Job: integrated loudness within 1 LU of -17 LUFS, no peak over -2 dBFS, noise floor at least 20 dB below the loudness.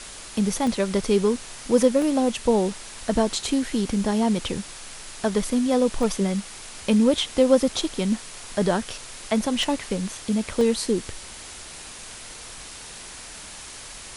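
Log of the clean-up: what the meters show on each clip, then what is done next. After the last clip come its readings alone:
dropouts 5; longest dropout 1.3 ms; noise floor -40 dBFS; noise floor target -44 dBFS; loudness -23.5 LUFS; peak -5.0 dBFS; loudness target -17.0 LUFS
-> interpolate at 0.67/2.02/6.03/9.63/10.61, 1.3 ms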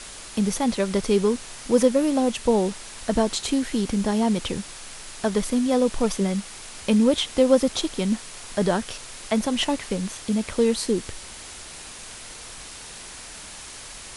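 dropouts 0; noise floor -40 dBFS; noise floor target -44 dBFS
-> denoiser 6 dB, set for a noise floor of -40 dBFS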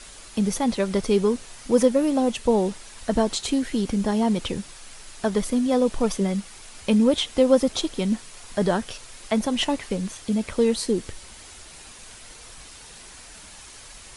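noise floor -45 dBFS; loudness -23.5 LUFS; peak -5.0 dBFS; loudness target -17.0 LUFS
-> gain +6.5 dB; limiter -2 dBFS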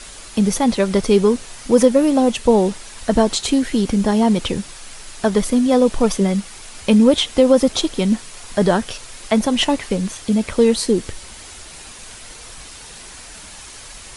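loudness -17.5 LUFS; peak -2.0 dBFS; noise floor -38 dBFS

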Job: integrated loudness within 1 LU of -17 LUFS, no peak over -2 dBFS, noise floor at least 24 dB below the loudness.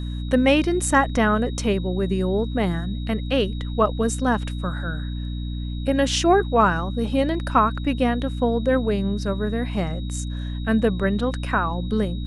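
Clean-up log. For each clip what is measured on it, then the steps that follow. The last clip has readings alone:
hum 60 Hz; harmonics up to 300 Hz; hum level -26 dBFS; steady tone 3800 Hz; tone level -43 dBFS; loudness -22.5 LUFS; peak -5.0 dBFS; loudness target -17.0 LUFS
-> notches 60/120/180/240/300 Hz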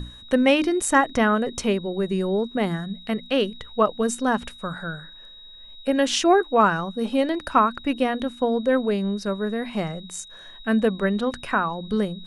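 hum none; steady tone 3800 Hz; tone level -43 dBFS
-> notch 3800 Hz, Q 30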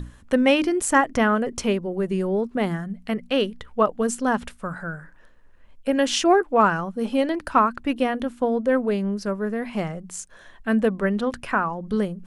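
steady tone none; loudness -23.0 LUFS; peak -4.5 dBFS; loudness target -17.0 LUFS
-> gain +6 dB; limiter -2 dBFS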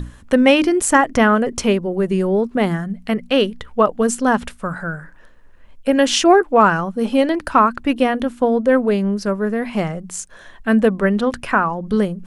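loudness -17.5 LUFS; peak -2.0 dBFS; noise floor -44 dBFS

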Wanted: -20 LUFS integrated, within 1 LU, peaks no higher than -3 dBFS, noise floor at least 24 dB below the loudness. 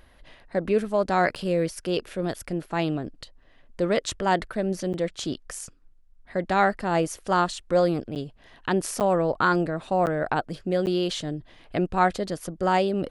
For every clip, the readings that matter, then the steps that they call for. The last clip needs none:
dropouts 6; longest dropout 9.0 ms; loudness -26.0 LUFS; peak -8.0 dBFS; loudness target -20.0 LUFS
-> interpolate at 1.35/4.93/8.15/9/10.06/10.86, 9 ms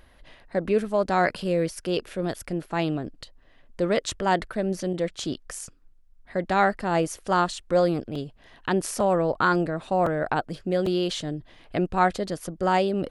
dropouts 0; loudness -26.0 LUFS; peak -8.0 dBFS; loudness target -20.0 LUFS
-> gain +6 dB; limiter -3 dBFS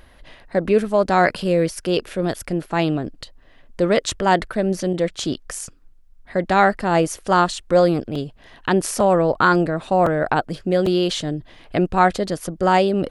loudness -20.0 LUFS; peak -3.0 dBFS; noise floor -49 dBFS

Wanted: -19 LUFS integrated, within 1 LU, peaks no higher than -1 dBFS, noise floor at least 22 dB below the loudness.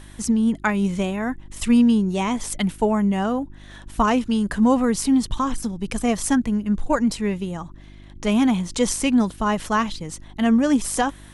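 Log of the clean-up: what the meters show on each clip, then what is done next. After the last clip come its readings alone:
hum 50 Hz; harmonics up to 350 Hz; hum level -42 dBFS; loudness -21.5 LUFS; peak -7.0 dBFS; loudness target -19.0 LUFS
-> de-hum 50 Hz, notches 7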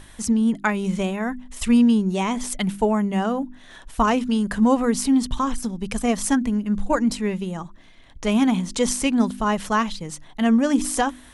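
hum none; loudness -22.0 LUFS; peak -7.0 dBFS; loudness target -19.0 LUFS
-> gain +3 dB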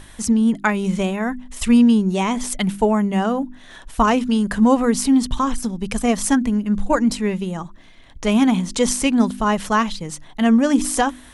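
loudness -19.0 LUFS; peak -4.0 dBFS; noise floor -43 dBFS

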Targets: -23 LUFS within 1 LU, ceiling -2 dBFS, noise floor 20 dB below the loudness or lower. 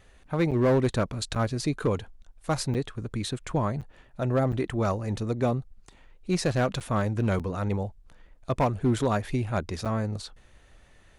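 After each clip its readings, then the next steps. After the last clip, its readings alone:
clipped 0.9%; flat tops at -17.5 dBFS; dropouts 8; longest dropout 7.2 ms; loudness -28.0 LUFS; peak -17.5 dBFS; loudness target -23.0 LUFS
-> clip repair -17.5 dBFS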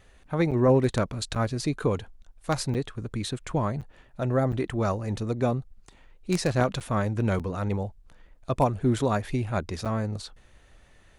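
clipped 0.0%; dropouts 8; longest dropout 7.2 ms
-> interpolate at 0.51/1.35/2.74/3.81/4.52/6.8/7.39/9.85, 7.2 ms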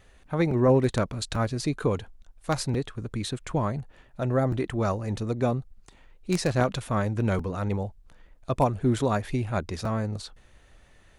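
dropouts 0; loudness -27.5 LUFS; peak -8.5 dBFS; loudness target -23.0 LUFS
-> gain +4.5 dB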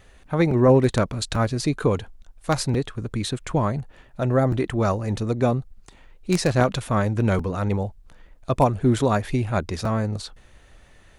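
loudness -23.0 LUFS; peak -4.0 dBFS; noise floor -53 dBFS

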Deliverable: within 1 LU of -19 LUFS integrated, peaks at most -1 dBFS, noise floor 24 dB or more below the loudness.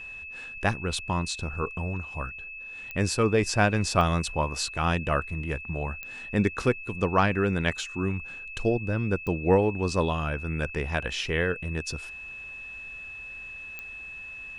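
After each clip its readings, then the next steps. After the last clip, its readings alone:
clicks 5; steady tone 2600 Hz; tone level -38 dBFS; loudness -28.5 LUFS; peak -8.5 dBFS; loudness target -19.0 LUFS
-> de-click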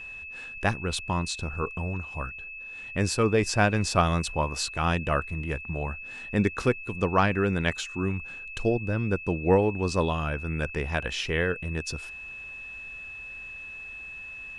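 clicks 0; steady tone 2600 Hz; tone level -38 dBFS
-> notch 2600 Hz, Q 30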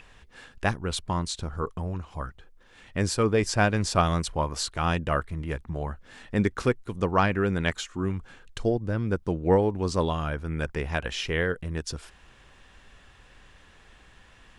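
steady tone none; loudness -28.0 LUFS; peak -9.0 dBFS; loudness target -19.0 LUFS
-> gain +9 dB; limiter -1 dBFS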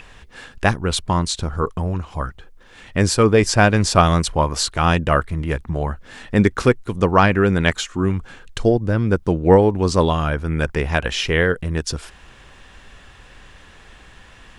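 loudness -19.0 LUFS; peak -1.0 dBFS; noise floor -46 dBFS

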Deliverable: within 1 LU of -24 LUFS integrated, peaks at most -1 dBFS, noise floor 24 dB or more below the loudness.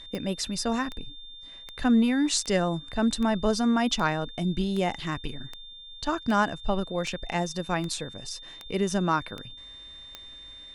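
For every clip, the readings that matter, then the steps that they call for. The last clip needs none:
clicks 14; steady tone 3600 Hz; tone level -43 dBFS; loudness -27.5 LUFS; peak -10.5 dBFS; loudness target -24.0 LUFS
-> de-click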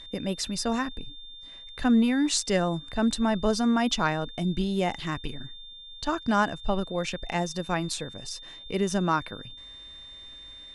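clicks 0; steady tone 3600 Hz; tone level -43 dBFS
-> notch 3600 Hz, Q 30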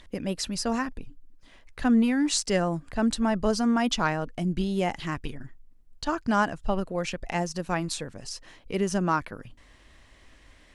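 steady tone none; loudness -27.5 LUFS; peak -10.5 dBFS; loudness target -24.0 LUFS
-> gain +3.5 dB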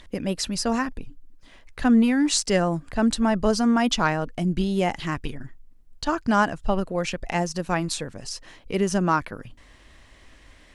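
loudness -24.0 LUFS; peak -7.0 dBFS; noise floor -53 dBFS

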